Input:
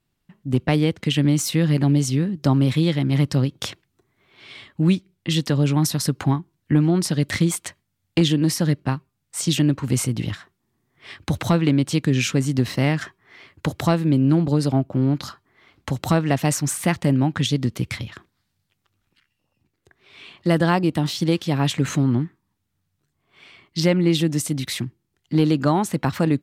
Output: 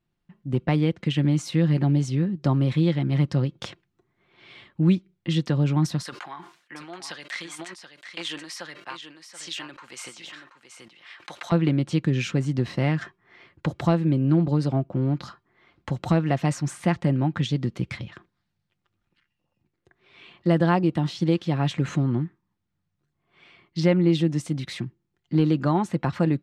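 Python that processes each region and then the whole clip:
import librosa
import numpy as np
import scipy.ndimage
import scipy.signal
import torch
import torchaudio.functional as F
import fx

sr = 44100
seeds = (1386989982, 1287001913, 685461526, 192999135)

y = fx.chain(x, sr, fx.highpass(hz=1100.0, slope=12),
    fx.echo_single(ms=729, db=-9.5),
    fx.sustainer(db_per_s=92.0), at=(6.03, 11.52))
y = scipy.signal.sosfilt(scipy.signal.butter(2, 8600.0, 'lowpass', fs=sr, output='sos'), y)
y = fx.high_shelf(y, sr, hz=4200.0, db=-11.0)
y = y + 0.32 * np.pad(y, (int(5.7 * sr / 1000.0), 0))[:len(y)]
y = y * 10.0 ** (-3.5 / 20.0)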